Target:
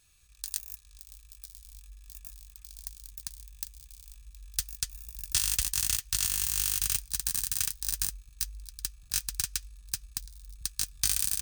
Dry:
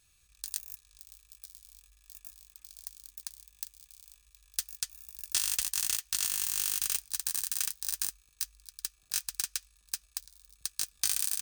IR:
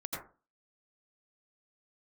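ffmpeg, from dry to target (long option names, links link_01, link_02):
-af "asubboost=boost=8.5:cutoff=140,volume=2dB"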